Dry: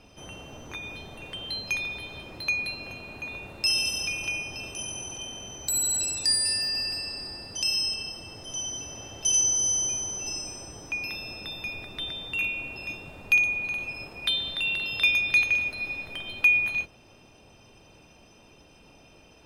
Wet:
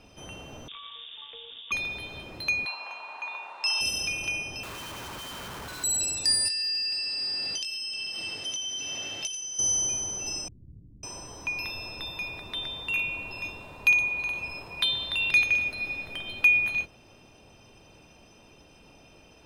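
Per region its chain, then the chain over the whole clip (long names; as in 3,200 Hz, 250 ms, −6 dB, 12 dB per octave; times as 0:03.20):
0:00.68–0:01.72: running median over 25 samples + voice inversion scrambler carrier 3,600 Hz
0:02.65–0:03.81: high-pass with resonance 940 Hz, resonance Q 4.6 + high-frequency loss of the air 73 metres
0:04.63–0:05.84: low-pass filter 4,100 Hz 24 dB per octave + flat-topped bell 1,300 Hz +13 dB 1.1 octaves + comparator with hysteresis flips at −47.5 dBFS
0:06.48–0:09.59: meter weighting curve D + downward compressor 16 to 1, threshold −29 dBFS + double-tracking delay 21 ms −7 dB
0:10.48–0:15.31: hollow resonant body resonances 1,000/4,000 Hz, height 11 dB, ringing for 35 ms + multiband delay without the direct sound lows, highs 550 ms, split 220 Hz
whole clip: no processing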